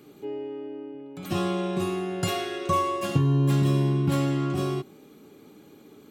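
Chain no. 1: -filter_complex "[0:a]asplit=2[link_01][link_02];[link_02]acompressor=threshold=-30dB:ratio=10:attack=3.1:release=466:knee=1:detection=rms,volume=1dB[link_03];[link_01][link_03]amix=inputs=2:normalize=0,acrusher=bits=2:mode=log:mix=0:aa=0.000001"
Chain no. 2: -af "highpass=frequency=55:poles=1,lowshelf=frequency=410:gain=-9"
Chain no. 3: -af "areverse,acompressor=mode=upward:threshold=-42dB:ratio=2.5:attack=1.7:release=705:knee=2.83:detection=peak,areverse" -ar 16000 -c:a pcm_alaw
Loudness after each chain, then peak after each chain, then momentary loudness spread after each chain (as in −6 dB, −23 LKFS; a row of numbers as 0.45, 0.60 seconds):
−23.5, −31.5, −26.0 LKFS; −10.5, −15.5, −10.0 dBFS; 11, 14, 15 LU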